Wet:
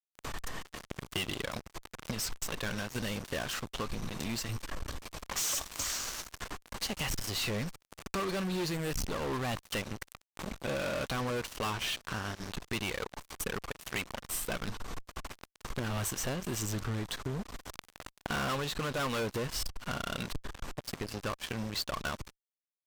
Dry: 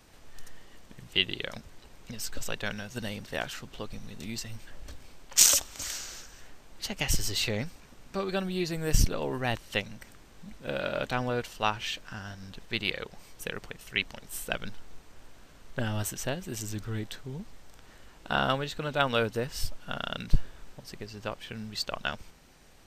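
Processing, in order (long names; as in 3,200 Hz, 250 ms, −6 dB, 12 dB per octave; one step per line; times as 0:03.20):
parametric band 1,100 Hz +8.5 dB 0.35 octaves
fuzz pedal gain 37 dB, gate −43 dBFS
downward compressor 3 to 1, threshold −39 dBFS, peak gain reduction 18.5 dB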